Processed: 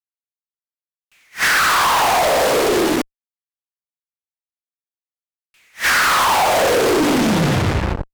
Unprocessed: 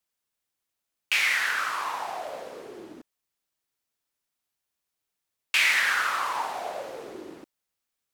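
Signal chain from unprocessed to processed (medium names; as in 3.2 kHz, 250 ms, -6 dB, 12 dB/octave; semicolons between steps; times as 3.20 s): tape stop on the ending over 2.04 s; bass shelf 160 Hz -10.5 dB; compression, threshold -37 dBFS, peak gain reduction 17 dB; fuzz box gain 56 dB, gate -51 dBFS; attacks held to a fixed rise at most 320 dB/s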